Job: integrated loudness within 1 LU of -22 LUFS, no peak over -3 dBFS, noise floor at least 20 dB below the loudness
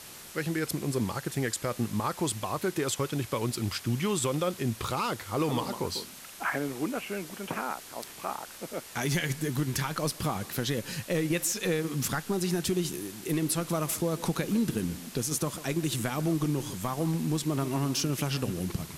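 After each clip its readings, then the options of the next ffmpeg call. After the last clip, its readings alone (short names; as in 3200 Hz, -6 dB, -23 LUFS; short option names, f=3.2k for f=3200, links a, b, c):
noise floor -47 dBFS; noise floor target -51 dBFS; loudness -31.0 LUFS; peak -17.5 dBFS; loudness target -22.0 LUFS
-> -af "afftdn=nr=6:nf=-47"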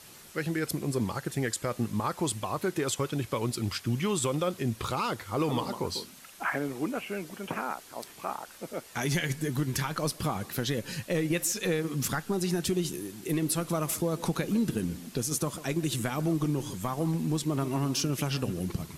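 noise floor -51 dBFS; loudness -31.0 LUFS; peak -17.5 dBFS; loudness target -22.0 LUFS
-> -af "volume=9dB"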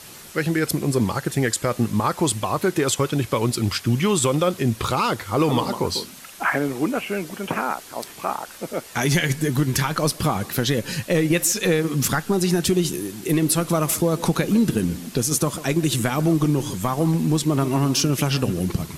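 loudness -22.0 LUFS; peak -8.5 dBFS; noise floor -42 dBFS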